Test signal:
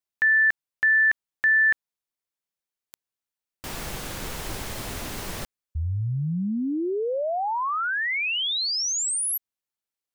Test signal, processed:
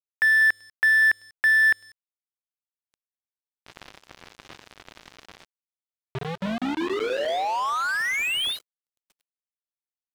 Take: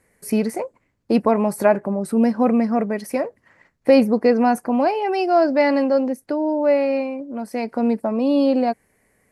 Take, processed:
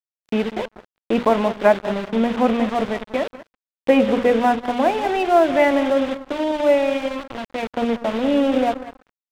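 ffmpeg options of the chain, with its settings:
-filter_complex "[0:a]highpass=f=260:p=1,bandreject=f=60:t=h:w=6,bandreject=f=120:t=h:w=6,bandreject=f=180:t=h:w=6,bandreject=f=240:t=h:w=6,bandreject=f=300:t=h:w=6,bandreject=f=360:t=h:w=6,bandreject=f=420:t=h:w=6,bandreject=f=480:t=h:w=6,bandreject=f=540:t=h:w=6,bandreject=f=600:t=h:w=6,acrusher=bits=4:mix=0:aa=0.000001,aresample=8000,aresample=44100,asplit=2[a][b];[b]adelay=193,lowpass=f=910:p=1,volume=-10dB,asplit=2[c][d];[d]adelay=193,lowpass=f=910:p=1,volume=0.4,asplit=2[e][f];[f]adelay=193,lowpass=f=910:p=1,volume=0.4,asplit=2[g][h];[h]adelay=193,lowpass=f=910:p=1,volume=0.4[i];[c][e][g][i]amix=inputs=4:normalize=0[j];[a][j]amix=inputs=2:normalize=0,aeval=exprs='sgn(val(0))*max(abs(val(0))-0.0188,0)':c=same,volume=3dB"

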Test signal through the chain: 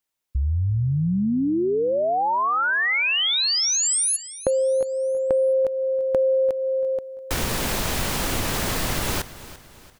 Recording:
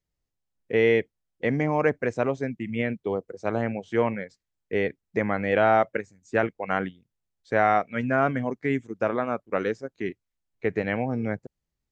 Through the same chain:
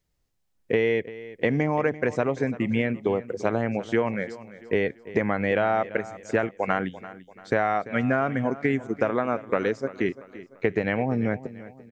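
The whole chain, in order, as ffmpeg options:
-af "acompressor=threshold=-28dB:ratio=6,aecho=1:1:341|682|1023|1364:0.15|0.0643|0.0277|0.0119,volume=8dB"

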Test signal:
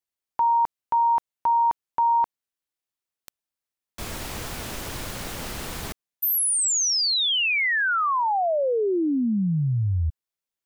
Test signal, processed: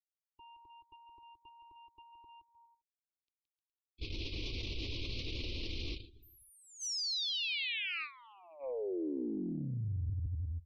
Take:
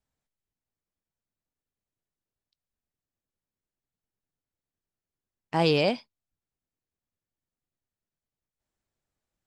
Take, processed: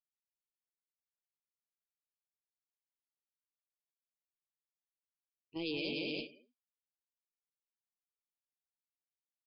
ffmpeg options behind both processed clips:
-filter_complex "[0:a]equalizer=f=890:w=2.2:g=3,asplit=2[a][b];[b]aecho=0:1:170|306|414.8|501.8|571.5:0.631|0.398|0.251|0.158|0.1[c];[a][c]amix=inputs=2:normalize=0,acontrast=76,firequalizer=gain_entry='entry(100,0);entry(160,-17);entry(320,-1);entry(760,-27);entry(1100,-21);entry(1600,-29);entry(2400,-2);entry(4200,0);entry(7800,-24)':delay=0.05:min_phase=1,agate=range=-15dB:threshold=-30dB:ratio=16:release=172:detection=peak,areverse,acompressor=threshold=-30dB:ratio=5:attack=6.9:release=41:knee=1:detection=rms,areverse,afftdn=nr=22:nf=-49,volume=-6.5dB"

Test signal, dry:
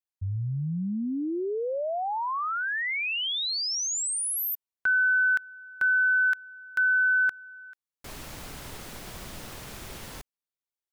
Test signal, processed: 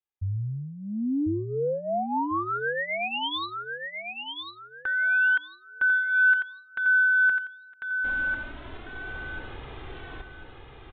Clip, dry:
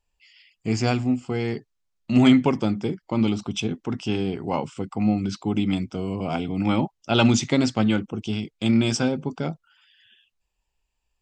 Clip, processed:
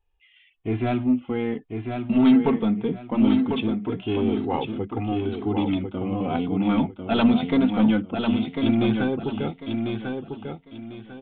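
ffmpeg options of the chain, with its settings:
-af "aresample=8000,asoftclip=type=tanh:threshold=-13.5dB,aresample=44100,flanger=delay=2.4:depth=2.1:regen=-2:speed=0.21:shape=sinusoidal,equalizer=f=2.6k:t=o:w=1.8:g=-4,aecho=1:1:1047|2094|3141|4188:0.531|0.149|0.0416|0.0117,volume=4.5dB"

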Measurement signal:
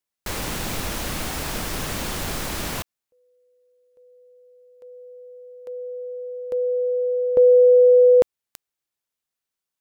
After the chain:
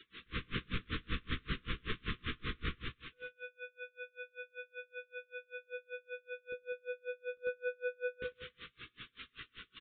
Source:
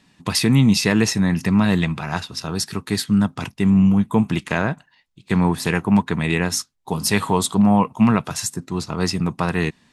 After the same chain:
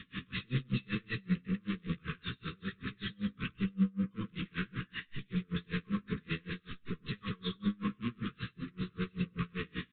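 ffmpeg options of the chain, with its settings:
-filter_complex "[0:a]aeval=exprs='val(0)+0.5*0.0631*sgn(val(0))':c=same,afftfilt=real='re*gte(hypot(re,im),0.02)':imag='im*gte(hypot(re,im),0.02)':win_size=1024:overlap=0.75,equalizer=f=570:t=o:w=1.9:g=-7,aresample=8000,asoftclip=type=tanh:threshold=-22.5dB,aresample=44100,asuperstop=centerf=730:order=20:qfactor=1.3,asplit=2[a][b];[b]adelay=16,volume=-5dB[c];[a][c]amix=inputs=2:normalize=0,asplit=2[d][e];[e]aecho=0:1:98|196|294|392|490:0.631|0.271|0.117|0.0502|0.0216[f];[d][f]amix=inputs=2:normalize=0,aeval=exprs='val(0)*pow(10,-34*(0.5-0.5*cos(2*PI*5.2*n/s))/20)':c=same,volume=-7dB"

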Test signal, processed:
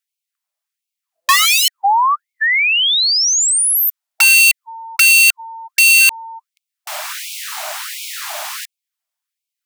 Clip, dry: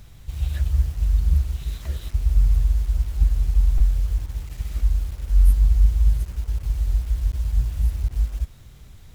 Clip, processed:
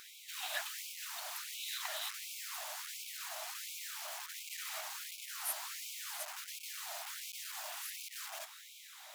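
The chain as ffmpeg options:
-af "highpass=f=430:t=q:w=4.9,aeval=exprs='(mod(3.76*val(0)+1,2)-1)/3.76':c=same,afftfilt=real='re*gte(b*sr/1024,570*pow(2200/570,0.5+0.5*sin(2*PI*1.4*pts/sr)))':imag='im*gte(b*sr/1024,570*pow(2200/570,0.5+0.5*sin(2*PI*1.4*pts/sr)))':win_size=1024:overlap=0.75,volume=5.5dB"

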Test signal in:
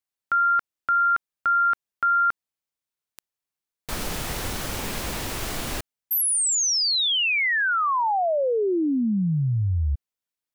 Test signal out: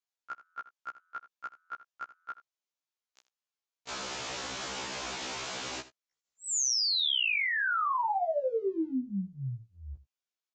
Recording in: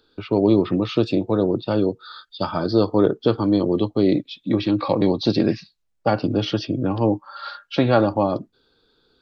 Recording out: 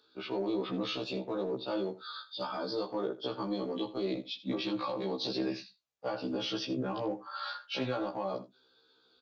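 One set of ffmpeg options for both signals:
-filter_complex "[0:a]highpass=f=580:p=1,equalizer=f=1.9k:t=o:w=0.38:g=-3.5,alimiter=limit=-18dB:level=0:latency=1:release=235,acompressor=threshold=-27dB:ratio=2:attack=0.11:release=30:knee=1:detection=rms,asplit=2[a][b];[b]aecho=0:1:80:0.158[c];[a][c]amix=inputs=2:normalize=0,aresample=16000,aresample=44100,afftfilt=real='re*1.73*eq(mod(b,3),0)':imag='im*1.73*eq(mod(b,3),0)':win_size=2048:overlap=0.75"

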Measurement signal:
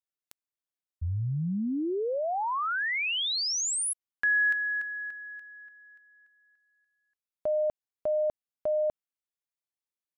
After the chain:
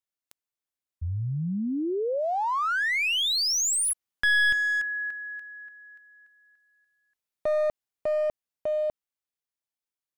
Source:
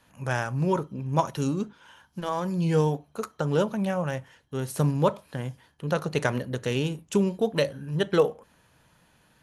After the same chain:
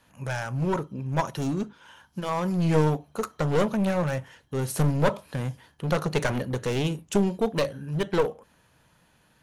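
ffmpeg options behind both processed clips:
-af "dynaudnorm=f=150:g=31:m=5dB,aeval=exprs='clip(val(0),-1,0.0631)':c=same"

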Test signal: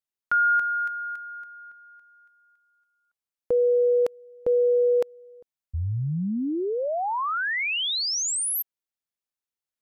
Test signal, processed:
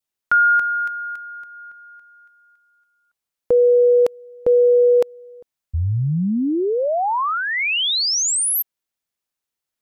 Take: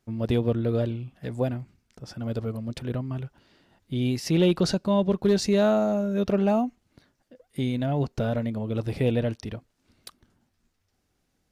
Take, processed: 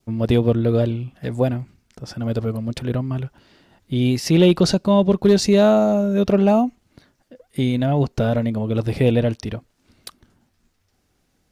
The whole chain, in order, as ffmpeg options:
-af "adynamicequalizer=threshold=0.00562:dfrequency=1600:dqfactor=2.4:tfrequency=1600:tqfactor=2.4:attack=5:release=100:ratio=0.375:range=2.5:mode=cutabove:tftype=bell,volume=7dB"

